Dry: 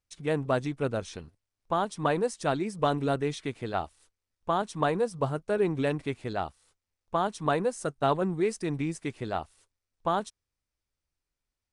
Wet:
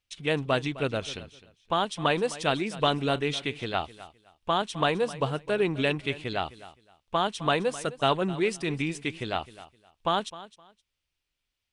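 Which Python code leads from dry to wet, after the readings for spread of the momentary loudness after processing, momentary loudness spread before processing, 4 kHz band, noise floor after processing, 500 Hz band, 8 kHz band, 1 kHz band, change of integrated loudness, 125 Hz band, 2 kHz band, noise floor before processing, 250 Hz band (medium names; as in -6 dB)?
8 LU, 8 LU, +11.0 dB, -84 dBFS, +0.5 dB, +2.0 dB, +1.5 dB, +1.5 dB, 0.0 dB, +6.0 dB, under -85 dBFS, 0.0 dB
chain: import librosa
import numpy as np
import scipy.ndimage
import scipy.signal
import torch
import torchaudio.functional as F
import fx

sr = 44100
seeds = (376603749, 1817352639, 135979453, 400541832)

p1 = fx.peak_eq(x, sr, hz=3000.0, db=13.0, octaves=1.1)
y = p1 + fx.echo_feedback(p1, sr, ms=259, feedback_pct=22, wet_db=-17, dry=0)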